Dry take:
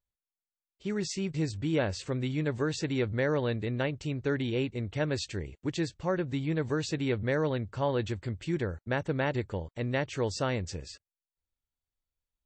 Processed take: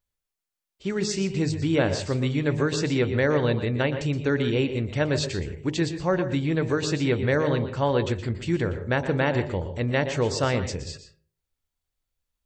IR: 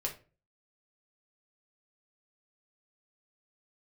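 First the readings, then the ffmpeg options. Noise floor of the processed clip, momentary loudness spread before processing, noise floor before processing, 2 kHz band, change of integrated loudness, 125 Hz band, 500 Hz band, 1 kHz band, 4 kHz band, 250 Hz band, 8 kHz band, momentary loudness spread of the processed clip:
−85 dBFS, 6 LU, below −85 dBFS, +7.0 dB, +6.5 dB, +6.5 dB, +6.5 dB, +6.5 dB, +7.0 dB, +6.0 dB, +7.0 dB, 6 LU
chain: -filter_complex "[0:a]bandreject=frequency=51.85:width_type=h:width=4,bandreject=frequency=103.7:width_type=h:width=4,bandreject=frequency=155.55:width_type=h:width=4,bandreject=frequency=207.4:width_type=h:width=4,bandreject=frequency=259.25:width_type=h:width=4,bandreject=frequency=311.1:width_type=h:width=4,bandreject=frequency=362.95:width_type=h:width=4,bandreject=frequency=414.8:width_type=h:width=4,bandreject=frequency=466.65:width_type=h:width=4,bandreject=frequency=518.5:width_type=h:width=4,bandreject=frequency=570.35:width_type=h:width=4,bandreject=frequency=622.2:width_type=h:width=4,bandreject=frequency=674.05:width_type=h:width=4,bandreject=frequency=725.9:width_type=h:width=4,bandreject=frequency=777.75:width_type=h:width=4,bandreject=frequency=829.6:width_type=h:width=4,bandreject=frequency=881.45:width_type=h:width=4,bandreject=frequency=933.3:width_type=h:width=4,bandreject=frequency=985.15:width_type=h:width=4,asplit=2[link_01][link_02];[1:a]atrim=start_sample=2205,adelay=118[link_03];[link_02][link_03]afir=irnorm=-1:irlink=0,volume=-12dB[link_04];[link_01][link_04]amix=inputs=2:normalize=0,volume=6.5dB"

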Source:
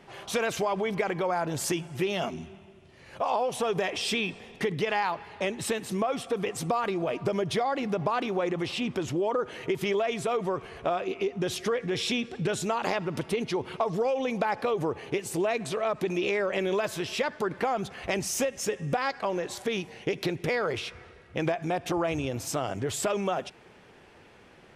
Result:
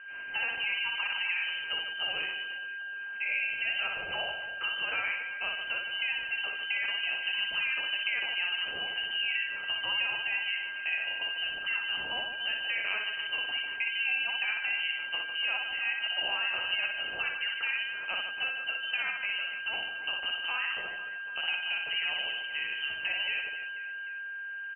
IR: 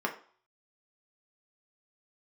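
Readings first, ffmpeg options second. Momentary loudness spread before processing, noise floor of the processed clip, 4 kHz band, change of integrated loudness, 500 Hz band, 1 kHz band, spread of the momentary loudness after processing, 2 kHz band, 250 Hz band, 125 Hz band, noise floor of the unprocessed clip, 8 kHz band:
4 LU, −39 dBFS, +6.5 dB, −1.0 dB, −22.0 dB, −12.5 dB, 5 LU, +7.0 dB, below −25 dB, below −25 dB, −54 dBFS, below −40 dB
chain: -filter_complex "[0:a]highpass=120,bandreject=frequency=2100:width=24,aeval=exprs='val(0)+0.0126*sin(2*PI*1600*n/s)':channel_layout=same,lowpass=frequency=2700:width_type=q:width=0.5098,lowpass=frequency=2700:width_type=q:width=0.6013,lowpass=frequency=2700:width_type=q:width=0.9,lowpass=frequency=2700:width_type=q:width=2.563,afreqshift=-3200,asplit=2[link_01][link_02];[link_02]aecho=0:1:60|150|285|487.5|791.2:0.631|0.398|0.251|0.158|0.1[link_03];[link_01][link_03]amix=inputs=2:normalize=0,volume=-6.5dB"

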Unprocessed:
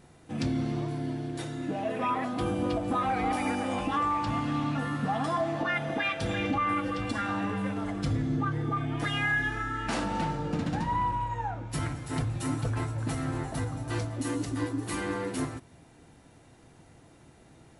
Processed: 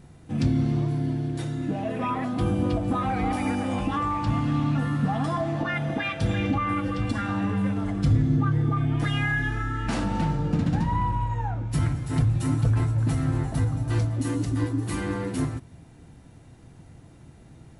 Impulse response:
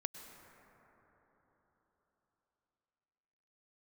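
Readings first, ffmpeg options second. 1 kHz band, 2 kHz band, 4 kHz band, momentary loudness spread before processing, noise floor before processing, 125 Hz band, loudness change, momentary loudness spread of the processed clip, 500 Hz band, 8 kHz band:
0.0 dB, 0.0 dB, 0.0 dB, 6 LU, −56 dBFS, +9.0 dB, +4.5 dB, 5 LU, +1.0 dB, 0.0 dB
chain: -af "bass=frequency=250:gain=10,treble=frequency=4000:gain=0"

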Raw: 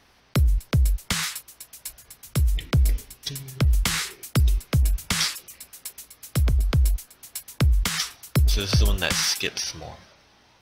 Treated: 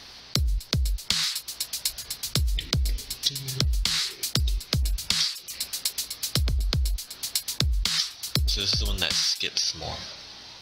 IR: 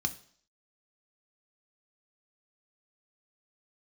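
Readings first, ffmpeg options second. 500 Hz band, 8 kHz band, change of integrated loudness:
−5.5 dB, +0.5 dB, −2.0 dB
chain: -af "equalizer=frequency=4400:width=1.4:gain=14.5,acompressor=threshold=-29dB:ratio=12,volume=7dB"

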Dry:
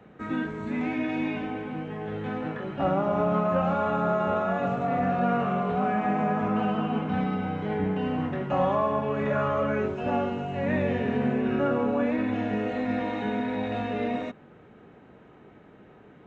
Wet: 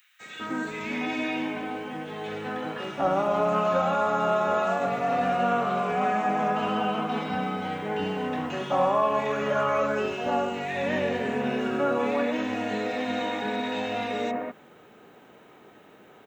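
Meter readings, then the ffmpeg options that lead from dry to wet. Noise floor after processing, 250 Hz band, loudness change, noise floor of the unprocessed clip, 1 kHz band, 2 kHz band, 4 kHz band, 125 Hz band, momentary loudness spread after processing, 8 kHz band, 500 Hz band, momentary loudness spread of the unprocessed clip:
−53 dBFS, −3.5 dB, +0.5 dB, −52 dBFS, +2.5 dB, +3.0 dB, +7.5 dB, −6.5 dB, 9 LU, can't be measured, +1.0 dB, 7 LU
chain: -filter_complex "[0:a]aemphasis=mode=production:type=riaa,acrossover=split=1900[link_01][link_02];[link_01]adelay=200[link_03];[link_03][link_02]amix=inputs=2:normalize=0,volume=3.5dB"

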